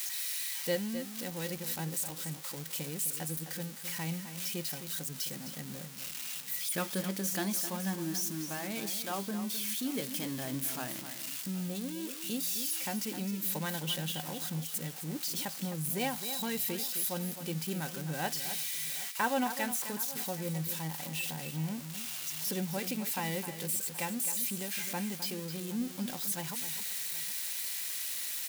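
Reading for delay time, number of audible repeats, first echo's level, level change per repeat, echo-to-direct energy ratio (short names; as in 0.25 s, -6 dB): 0.26 s, 2, -10.5 dB, no steady repeat, -10.0 dB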